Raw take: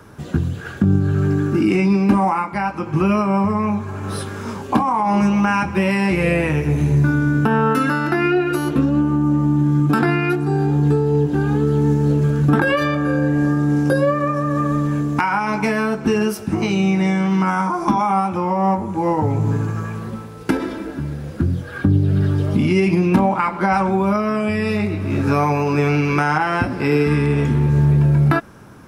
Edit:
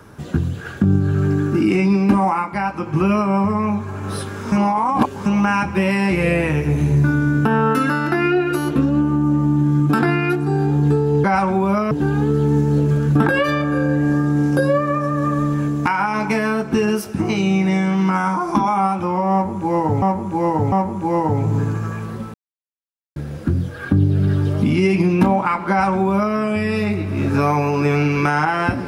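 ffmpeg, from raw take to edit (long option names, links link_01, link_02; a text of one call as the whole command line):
ffmpeg -i in.wav -filter_complex "[0:a]asplit=9[link_01][link_02][link_03][link_04][link_05][link_06][link_07][link_08][link_09];[link_01]atrim=end=4.522[link_10];[link_02]atrim=start=4.518:end=5.262,asetpts=PTS-STARTPTS,areverse[link_11];[link_03]atrim=start=5.258:end=11.242[link_12];[link_04]atrim=start=23.618:end=24.292[link_13];[link_05]atrim=start=11.238:end=19.352[link_14];[link_06]atrim=start=18.648:end=19.352[link_15];[link_07]atrim=start=18.648:end=20.27,asetpts=PTS-STARTPTS,afade=type=out:start_time=1.618:duration=0.004:curve=hsin[link_16];[link_08]atrim=start=20.27:end=21.09,asetpts=PTS-STARTPTS,volume=0[link_17];[link_09]atrim=start=21.09,asetpts=PTS-STARTPTS,afade=type=in:duration=0.004:curve=hsin[link_18];[link_10][link_11]acrossfade=duration=0.004:curve1=hsin:curve2=hsin[link_19];[link_19][link_12]acrossfade=duration=0.004:curve1=hsin:curve2=hsin[link_20];[link_20][link_13]acrossfade=duration=0.004:curve1=hsin:curve2=hsin[link_21];[link_21][link_14]acrossfade=duration=0.004:curve1=hsin:curve2=hsin[link_22];[link_22][link_15]acrossfade=duration=0.004:curve1=hsin:curve2=hsin[link_23];[link_16][link_17][link_18]concat=n=3:v=0:a=1[link_24];[link_23][link_24]acrossfade=duration=0.004:curve1=hsin:curve2=hsin" out.wav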